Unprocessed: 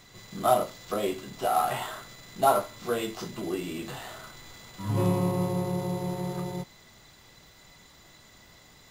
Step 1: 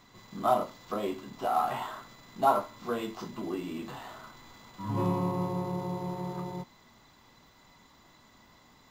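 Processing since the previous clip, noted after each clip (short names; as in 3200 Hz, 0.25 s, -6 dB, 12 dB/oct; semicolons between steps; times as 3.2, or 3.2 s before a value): fifteen-band EQ 250 Hz +8 dB, 1000 Hz +9 dB, 10000 Hz -9 dB; gain -6.5 dB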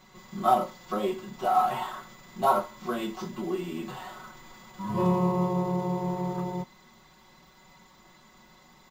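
comb 5.4 ms, depth 98%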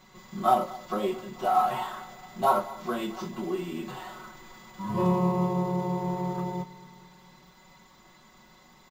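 feedback echo 0.222 s, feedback 59%, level -19 dB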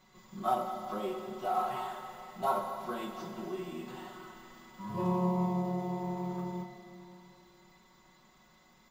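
Schroeder reverb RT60 3.2 s, combs from 33 ms, DRR 5 dB; gain -8 dB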